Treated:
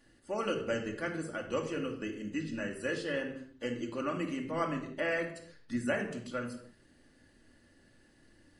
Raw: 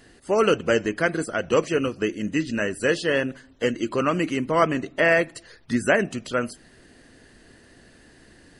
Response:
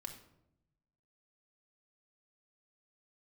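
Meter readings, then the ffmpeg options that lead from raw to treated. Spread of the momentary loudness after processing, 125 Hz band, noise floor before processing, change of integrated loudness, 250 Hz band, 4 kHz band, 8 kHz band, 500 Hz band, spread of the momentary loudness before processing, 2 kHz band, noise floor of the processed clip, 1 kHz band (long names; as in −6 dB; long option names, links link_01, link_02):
6 LU, −11.0 dB, −53 dBFS, −12.5 dB, −10.5 dB, −12.5 dB, −13.5 dB, −13.0 dB, 8 LU, −13.0 dB, −65 dBFS, −13.0 dB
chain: -filter_complex "[1:a]atrim=start_sample=2205,afade=type=out:start_time=0.35:duration=0.01,atrim=end_sample=15876[link_01];[0:a][link_01]afir=irnorm=-1:irlink=0,volume=-9dB"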